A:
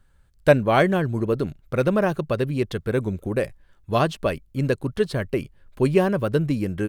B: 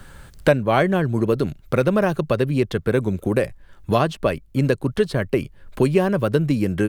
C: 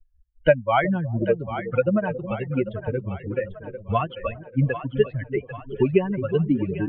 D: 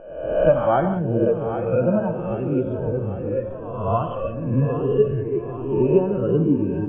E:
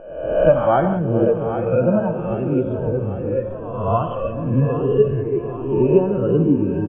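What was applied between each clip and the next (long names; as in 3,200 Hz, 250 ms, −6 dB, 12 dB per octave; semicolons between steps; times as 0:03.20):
multiband upward and downward compressor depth 70%; level +2 dB
spectral dynamics exaggerated over time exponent 3; Chebyshev low-pass filter 3,100 Hz, order 6; echo with a time of its own for lows and highs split 500 Hz, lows 365 ms, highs 794 ms, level −10.5 dB; level +4 dB
peak hold with a rise ahead of every peak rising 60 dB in 0.96 s; moving average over 22 samples; reverb whose tail is shaped and stops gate 210 ms flat, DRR 6.5 dB
single-tap delay 447 ms −18.5 dB; level +2.5 dB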